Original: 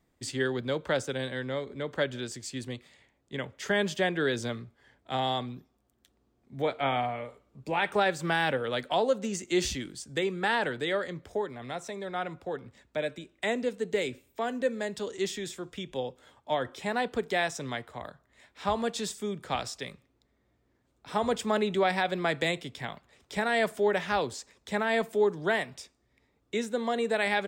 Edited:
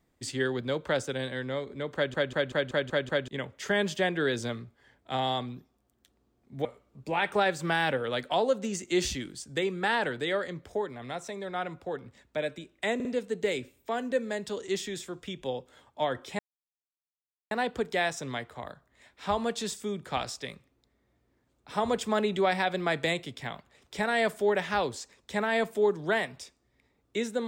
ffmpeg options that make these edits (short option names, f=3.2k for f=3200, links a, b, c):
-filter_complex "[0:a]asplit=12[a][b][c][d][e][f][g][h][i][j][k][l];[a]atrim=end=2.142[m];[b]atrim=start=1.948:end=2.142[n];[c]atrim=start=1.948:end=2.142[o];[d]atrim=start=1.948:end=2.142[p];[e]atrim=start=1.948:end=2.142[q];[f]atrim=start=1.948:end=2.142[r];[g]atrim=start=1.948:end=2.142[s];[h]atrim=start=3.278:end=6.652[t];[i]atrim=start=7.248:end=13.602[u];[j]atrim=start=13.548:end=13.602[v];[k]atrim=start=13.548:end=16.89,asetpts=PTS-STARTPTS,afade=t=out:st=3.338:d=0.004:c=hsin,apad=pad_dur=1.12[w];[l]atrim=start=16.89,asetpts=PTS-STARTPTS,afade=t=in:d=0.004:c=hsin[x];[m][n]acrossfade=d=0.004:c1=hsin:c2=hsin[y];[y][o]acrossfade=d=0.004:c1=hsin:c2=hsin[z];[z][p]acrossfade=d=0.004:c1=hsin:c2=hsin[aa];[aa][q]acrossfade=d=0.004:c1=hsin:c2=hsin[ab];[ab][r]acrossfade=d=0.004:c1=hsin:c2=hsin[ac];[ac][s]acrossfade=d=0.004:c1=hsin:c2=hsin[ad];[ad][t]acrossfade=d=0.004:c1=hsin:c2=hsin[ae];[ae][u]acrossfade=d=0.004:c1=hsin:c2=hsin[af];[af][v]acrossfade=d=0.004:c1=hsin:c2=hsin[ag];[w][x]concat=n=2:v=0:a=1[ah];[ag][ah]acrossfade=d=0.004:c1=hsin:c2=hsin"